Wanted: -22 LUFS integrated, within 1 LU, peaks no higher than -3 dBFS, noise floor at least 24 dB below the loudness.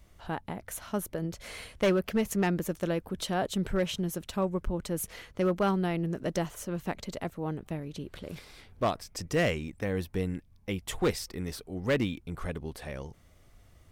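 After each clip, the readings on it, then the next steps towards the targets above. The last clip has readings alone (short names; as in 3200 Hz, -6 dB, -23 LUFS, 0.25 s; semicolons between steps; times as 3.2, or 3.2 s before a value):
clipped 0.6%; flat tops at -20.0 dBFS; loudness -32.5 LUFS; peak -20.0 dBFS; loudness target -22.0 LUFS
-> clip repair -20 dBFS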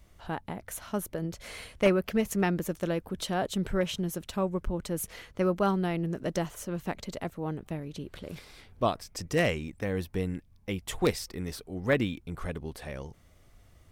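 clipped 0.0%; loudness -32.0 LUFS; peak -11.0 dBFS; loudness target -22.0 LUFS
-> gain +10 dB; limiter -3 dBFS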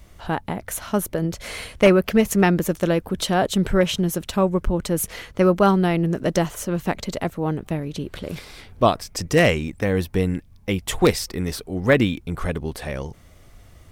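loudness -22.0 LUFS; peak -3.0 dBFS; noise floor -49 dBFS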